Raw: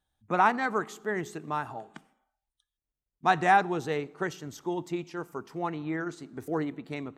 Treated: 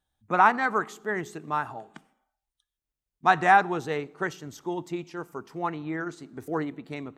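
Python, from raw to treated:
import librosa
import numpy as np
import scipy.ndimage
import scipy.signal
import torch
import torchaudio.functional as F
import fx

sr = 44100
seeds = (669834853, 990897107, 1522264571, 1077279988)

y = fx.dynamic_eq(x, sr, hz=1300.0, q=0.82, threshold_db=-36.0, ratio=4.0, max_db=5)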